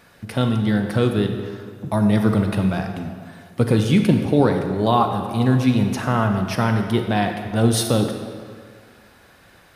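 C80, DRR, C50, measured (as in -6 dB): 7.0 dB, 5.0 dB, 6.0 dB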